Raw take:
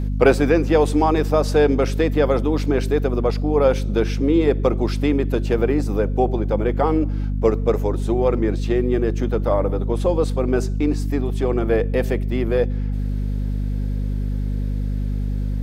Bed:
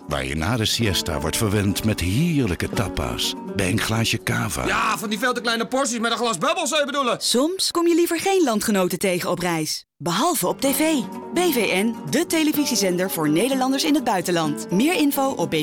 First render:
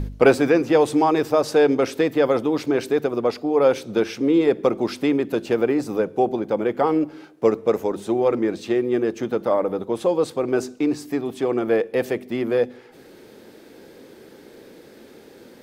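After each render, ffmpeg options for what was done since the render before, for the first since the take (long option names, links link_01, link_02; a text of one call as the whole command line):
ffmpeg -i in.wav -af "bandreject=frequency=50:width_type=h:width=4,bandreject=frequency=100:width_type=h:width=4,bandreject=frequency=150:width_type=h:width=4,bandreject=frequency=200:width_type=h:width=4,bandreject=frequency=250:width_type=h:width=4" out.wav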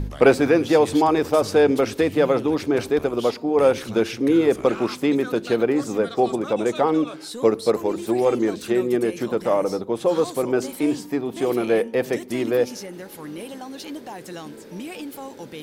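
ffmpeg -i in.wav -i bed.wav -filter_complex "[1:a]volume=-15.5dB[link_01];[0:a][link_01]amix=inputs=2:normalize=0" out.wav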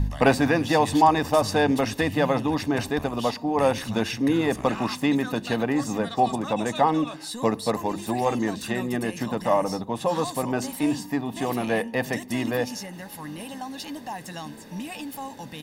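ffmpeg -i in.wav -af "equalizer=frequency=360:width=7.4:gain=-10.5,aecho=1:1:1.1:0.58" out.wav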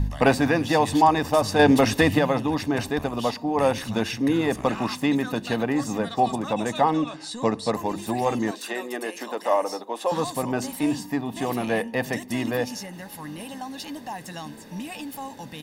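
ffmpeg -i in.wav -filter_complex "[0:a]asettb=1/sr,asplit=3[link_01][link_02][link_03];[link_01]atrim=end=1.594[link_04];[link_02]atrim=start=1.59:end=2.19,asetpts=PTS-STARTPTS,afade=type=in:duration=0.004:curve=qsin,afade=type=out:start_time=0.596:duration=0.004:curve=qsin,acontrast=44[link_05];[link_03]atrim=start=2.186[link_06];[link_04][link_05]acrossfade=duration=0.004:curve1=hsin:curve2=qsin[link_07];[link_07][link_06]acrossfade=duration=0.004:curve1=qsin:curve2=hsin,asettb=1/sr,asplit=3[link_08][link_09][link_10];[link_08]atrim=end=6.944[link_11];[link_09]atrim=start=6.94:end=7.72,asetpts=PTS-STARTPTS,afade=type=in:duration=0.004:curve=qsin,afade=type=out:start_time=0.776:duration=0.004:curve=qsin,lowpass=frequency=8700:width=0.5412,lowpass=frequency=8700:width=1.3066[link_12];[link_10]atrim=start=7.716[link_13];[link_11][link_12]acrossfade=duration=0.004:curve1=hsin:curve2=qsin[link_14];[link_14][link_13]acrossfade=duration=0.004:curve1=qsin:curve2=hsin,asettb=1/sr,asplit=3[link_15][link_16][link_17];[link_15]atrim=end=8.514[link_18];[link_16]atrim=start=8.51:end=10.12,asetpts=PTS-STARTPTS,afade=type=in:duration=0.004:curve=qsin,afade=type=out:start_time=1.606:duration=0.004:curve=qsin,highpass=frequency=330:width=0.5412,highpass=frequency=330:width=1.3066[link_19];[link_17]atrim=start=10.116[link_20];[link_18][link_19]acrossfade=duration=0.004:curve1=hsin:curve2=qsin[link_21];[link_21][link_20]acrossfade=duration=0.004:curve1=qsin:curve2=hsin" out.wav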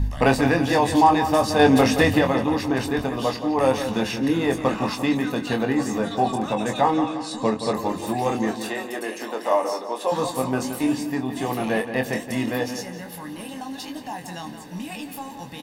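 ffmpeg -i in.wav -filter_complex "[0:a]asplit=2[link_01][link_02];[link_02]adelay=23,volume=-6dB[link_03];[link_01][link_03]amix=inputs=2:normalize=0,asplit=2[link_04][link_05];[link_05]adelay=173,lowpass=frequency=3600:poles=1,volume=-9.5dB,asplit=2[link_06][link_07];[link_07]adelay=173,lowpass=frequency=3600:poles=1,volume=0.49,asplit=2[link_08][link_09];[link_09]adelay=173,lowpass=frequency=3600:poles=1,volume=0.49,asplit=2[link_10][link_11];[link_11]adelay=173,lowpass=frequency=3600:poles=1,volume=0.49,asplit=2[link_12][link_13];[link_13]adelay=173,lowpass=frequency=3600:poles=1,volume=0.49[link_14];[link_04][link_06][link_08][link_10][link_12][link_14]amix=inputs=6:normalize=0" out.wav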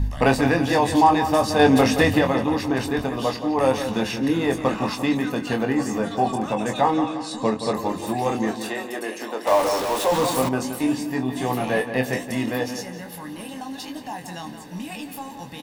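ffmpeg -i in.wav -filter_complex "[0:a]asettb=1/sr,asplit=3[link_01][link_02][link_03];[link_01]atrim=end=5.294[link_04];[link_02]atrim=start=5.29:end=6.74,asetpts=PTS-STARTPTS,afade=type=in:duration=0.004:curve=qsin,afade=type=out:start_time=1.446:duration=0.004:curve=qsin,bandreject=frequency=3800:width=9.4[link_05];[link_03]atrim=start=6.736[link_06];[link_04][link_05]acrossfade=duration=0.004:curve1=hsin:curve2=qsin[link_07];[link_07][link_06]acrossfade=duration=0.004:curve1=qsin:curve2=hsin,asettb=1/sr,asplit=3[link_08][link_09][link_10];[link_08]atrim=end=9.474[link_11];[link_09]atrim=start=9.47:end=10.49,asetpts=PTS-STARTPTS,afade=type=in:duration=0.004:curve=qsin,afade=type=out:start_time=1.016:duration=0.004:curve=qsin,aeval=exprs='val(0)+0.5*0.075*sgn(val(0))':channel_layout=same[link_12];[link_10]atrim=start=10.486[link_13];[link_11][link_12]acrossfade=duration=0.004:curve1=hsin:curve2=qsin[link_14];[link_14][link_13]acrossfade=duration=0.004:curve1=qsin:curve2=hsin,asettb=1/sr,asplit=3[link_15][link_16][link_17];[link_15]atrim=end=11.094[link_18];[link_16]atrim=start=11.09:end=12.3,asetpts=PTS-STARTPTS,afade=type=in:duration=0.004:curve=qsin,afade=type=out:start_time=1.206:duration=0.004:curve=qsin,asplit=2[link_19][link_20];[link_20]adelay=16,volume=-6dB[link_21];[link_19][link_21]amix=inputs=2:normalize=0,atrim=end_sample=53361[link_22];[link_17]atrim=start=12.296[link_23];[link_18][link_22]acrossfade=duration=0.004:curve1=hsin:curve2=qsin[link_24];[link_24][link_23]acrossfade=duration=0.004:curve1=qsin:curve2=hsin" out.wav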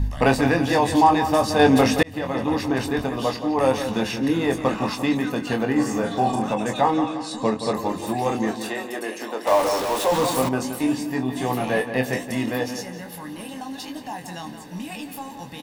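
ffmpeg -i in.wav -filter_complex "[0:a]asettb=1/sr,asplit=3[link_01][link_02][link_03];[link_01]atrim=end=5.724[link_04];[link_02]atrim=start=5.72:end=6.54,asetpts=PTS-STARTPTS,afade=type=in:duration=0.004:curve=qsin,afade=type=out:start_time=0.816:duration=0.004:curve=qsin,asplit=2[link_05][link_06];[link_06]adelay=40,volume=-5dB[link_07];[link_05][link_07]amix=inputs=2:normalize=0,atrim=end_sample=36162[link_08];[link_03]atrim=start=6.536[link_09];[link_04][link_08]acrossfade=duration=0.004:curve1=hsin:curve2=qsin[link_10];[link_10][link_09]acrossfade=duration=0.004:curve1=qsin:curve2=hsin,asplit=2[link_11][link_12];[link_11]atrim=end=2.03,asetpts=PTS-STARTPTS,afade=type=out:start_time=2.026:duration=0.004:curve=hsin[link_13];[link_12]atrim=start=2.03,asetpts=PTS-STARTPTS,afade=type=in:duration=0.5[link_14];[link_13][link_14]concat=n=2:v=0:a=1" out.wav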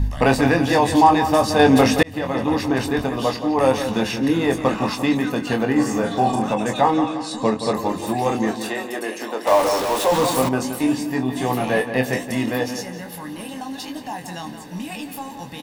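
ffmpeg -i in.wav -af "volume=2.5dB,alimiter=limit=-2dB:level=0:latency=1" out.wav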